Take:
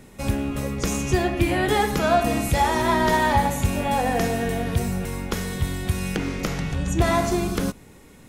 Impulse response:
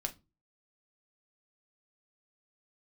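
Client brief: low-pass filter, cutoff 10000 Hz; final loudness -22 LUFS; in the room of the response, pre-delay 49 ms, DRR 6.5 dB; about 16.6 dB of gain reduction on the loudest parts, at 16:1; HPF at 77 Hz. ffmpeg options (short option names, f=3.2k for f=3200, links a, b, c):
-filter_complex "[0:a]highpass=77,lowpass=10k,acompressor=threshold=-32dB:ratio=16,asplit=2[a][b];[1:a]atrim=start_sample=2205,adelay=49[c];[b][c]afir=irnorm=-1:irlink=0,volume=-7dB[d];[a][d]amix=inputs=2:normalize=0,volume=13.5dB"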